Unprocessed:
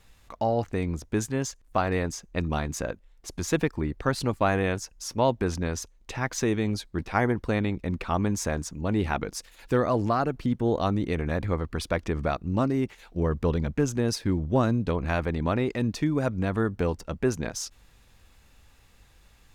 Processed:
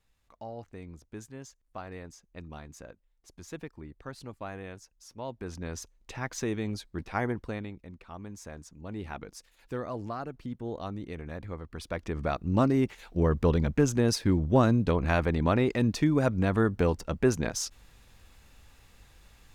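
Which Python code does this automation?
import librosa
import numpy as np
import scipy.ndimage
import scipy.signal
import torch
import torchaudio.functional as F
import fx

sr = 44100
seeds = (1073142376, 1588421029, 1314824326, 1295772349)

y = fx.gain(x, sr, db=fx.line((5.22, -16.0), (5.79, -6.0), (7.35, -6.0), (7.97, -18.5), (9.14, -11.5), (11.64, -11.5), (12.58, 1.0)))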